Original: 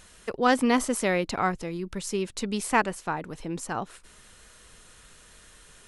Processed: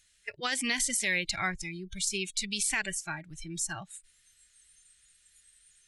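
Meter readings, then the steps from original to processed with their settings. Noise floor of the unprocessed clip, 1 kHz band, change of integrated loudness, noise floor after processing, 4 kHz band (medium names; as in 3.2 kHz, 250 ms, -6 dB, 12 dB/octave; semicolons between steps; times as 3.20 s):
-54 dBFS, -13.0 dB, -3.5 dB, -67 dBFS, +3.5 dB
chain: graphic EQ 250/500/1000/2000/4000/8000 Hz -10/-7/-12/+8/+7/+8 dB; spectral noise reduction 20 dB; peak limiter -18.5 dBFS, peak gain reduction 12 dB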